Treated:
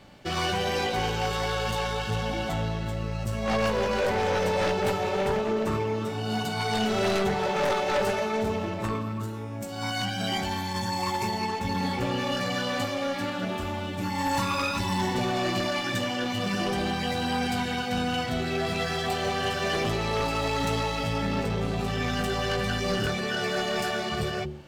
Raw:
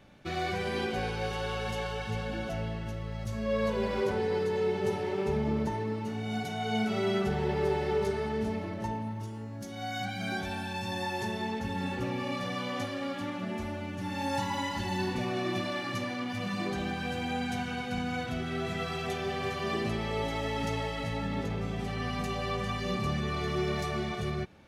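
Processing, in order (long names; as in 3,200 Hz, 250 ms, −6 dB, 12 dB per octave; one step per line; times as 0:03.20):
hum removal 73.77 Hz, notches 5
harmonic generator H 2 −14 dB, 3 −16 dB, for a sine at −17.5 dBFS
formants moved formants +4 semitones
in parallel at −8 dB: sine wavefolder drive 16 dB, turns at −12.5 dBFS
on the sum: level −2.5 dB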